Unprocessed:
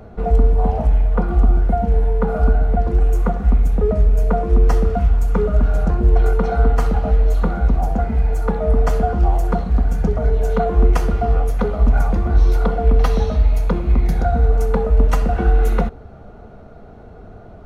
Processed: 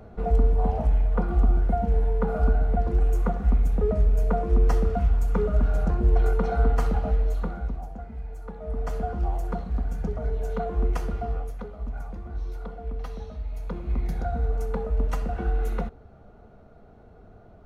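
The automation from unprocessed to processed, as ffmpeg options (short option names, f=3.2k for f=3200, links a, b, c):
-af "volume=9.5dB,afade=t=out:st=6.94:d=0.95:silence=0.237137,afade=t=in:st=8.55:d=0.5:silence=0.398107,afade=t=out:st=11.18:d=0.5:silence=0.398107,afade=t=in:st=13.45:d=0.55:silence=0.398107"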